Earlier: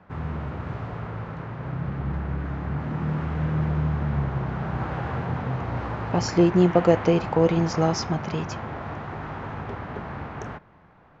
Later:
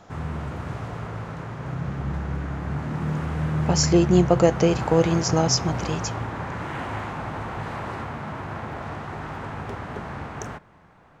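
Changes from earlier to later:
speech: entry −2.45 s
master: remove high-frequency loss of the air 170 metres

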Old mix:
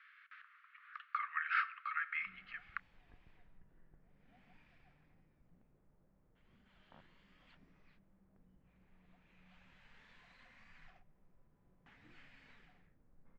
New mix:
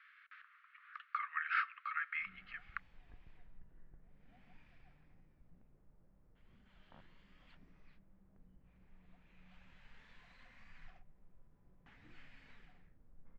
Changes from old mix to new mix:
speech: send −7.5 dB
master: add low-shelf EQ 83 Hz +8 dB

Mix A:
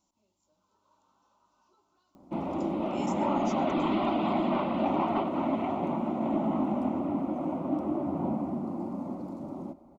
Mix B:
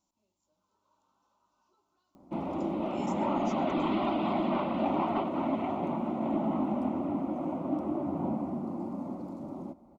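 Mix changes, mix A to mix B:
speech −4.5 dB
background: send off

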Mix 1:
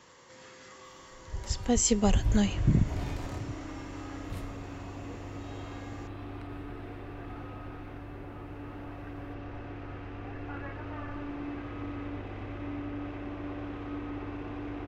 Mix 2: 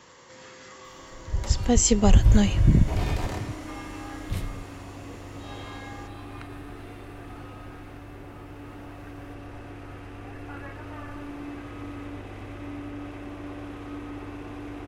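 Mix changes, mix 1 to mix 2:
speech +4.5 dB
first sound +10.0 dB
second sound: remove high-frequency loss of the air 160 metres

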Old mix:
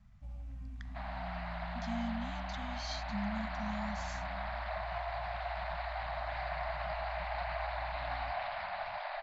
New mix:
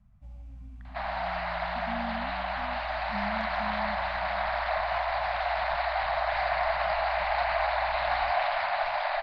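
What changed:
speech: add low-pass filter 1,200 Hz 12 dB per octave
second sound +11.0 dB

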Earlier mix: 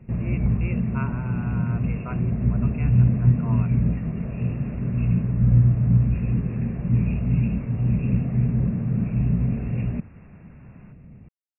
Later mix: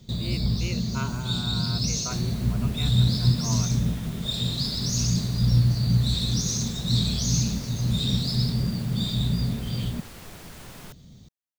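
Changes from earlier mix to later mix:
first sound −3.5 dB
second sound +11.5 dB
master: remove linear-phase brick-wall low-pass 2,800 Hz

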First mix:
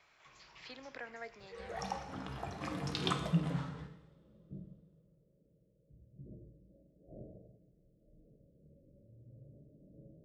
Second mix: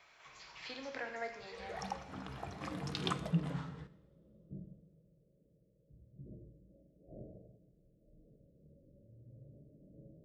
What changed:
speech: send on
second sound: send −10.0 dB

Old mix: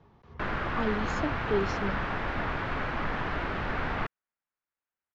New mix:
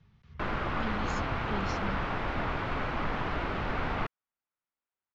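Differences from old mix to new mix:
speech: add flat-topped bell 540 Hz −15.5 dB 2.4 octaves
master: add parametric band 1,700 Hz −4.5 dB 0.4 octaves

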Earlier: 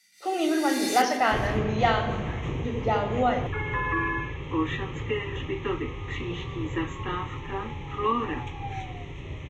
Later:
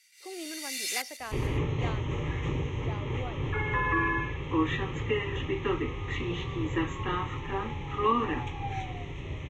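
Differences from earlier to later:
speech −10.5 dB
reverb: off

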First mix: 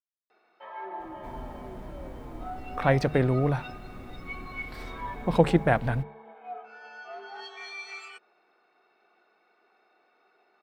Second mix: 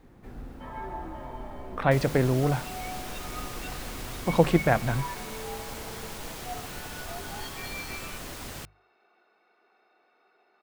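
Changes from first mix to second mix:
speech: entry −1.00 s
second sound: unmuted

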